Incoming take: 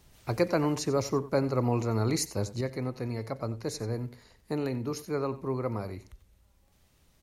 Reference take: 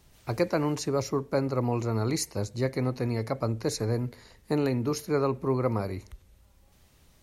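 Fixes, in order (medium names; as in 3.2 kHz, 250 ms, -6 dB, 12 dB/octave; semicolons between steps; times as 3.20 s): de-click; inverse comb 91 ms -16.5 dB; trim 0 dB, from 2.61 s +5 dB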